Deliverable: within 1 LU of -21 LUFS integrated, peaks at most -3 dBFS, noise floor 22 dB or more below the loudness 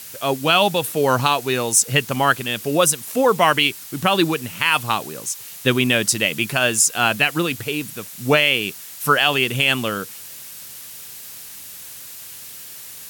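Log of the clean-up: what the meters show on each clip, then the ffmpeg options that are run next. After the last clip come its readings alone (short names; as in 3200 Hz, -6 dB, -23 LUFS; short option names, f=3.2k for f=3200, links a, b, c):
noise floor -37 dBFS; noise floor target -41 dBFS; loudness -18.5 LUFS; peak -2.0 dBFS; loudness target -21.0 LUFS
-> -af "afftdn=nr=6:nf=-37"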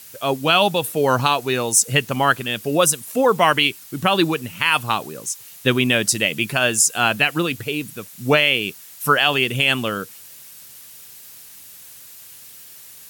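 noise floor -42 dBFS; loudness -18.5 LUFS; peak -2.0 dBFS; loudness target -21.0 LUFS
-> -af "volume=-2.5dB"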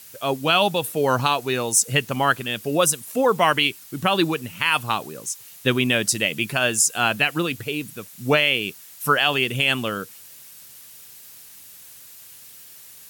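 loudness -21.0 LUFS; peak -4.5 dBFS; noise floor -45 dBFS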